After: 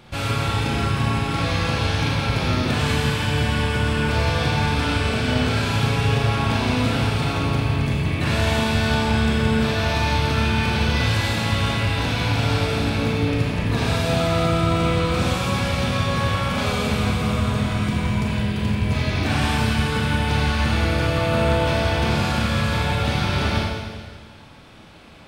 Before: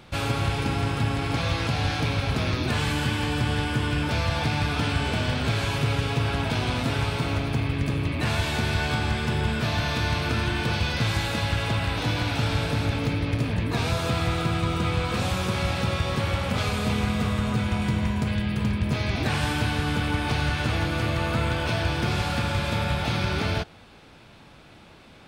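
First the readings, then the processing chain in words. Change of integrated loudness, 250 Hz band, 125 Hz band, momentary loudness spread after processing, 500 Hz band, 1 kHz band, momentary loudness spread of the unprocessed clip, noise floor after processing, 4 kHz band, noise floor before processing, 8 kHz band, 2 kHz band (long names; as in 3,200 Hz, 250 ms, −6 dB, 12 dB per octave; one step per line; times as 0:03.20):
+4.5 dB, +5.0 dB, +4.0 dB, 3 LU, +6.0 dB, +5.0 dB, 1 LU, −39 dBFS, +4.0 dB, −50 dBFS, +4.0 dB, +4.0 dB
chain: four-comb reverb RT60 1.6 s, combs from 28 ms, DRR −2 dB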